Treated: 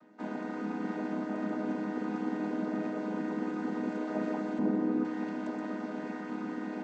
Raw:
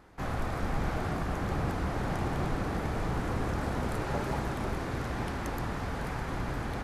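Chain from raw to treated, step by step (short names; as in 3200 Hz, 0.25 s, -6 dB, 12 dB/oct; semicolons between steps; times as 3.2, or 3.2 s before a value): chord vocoder minor triad, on G#3; 4.59–5.05 tilt shelf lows +7.5 dB, about 1100 Hz; reverb RT60 0.50 s, pre-delay 15 ms, DRR 9.5 dB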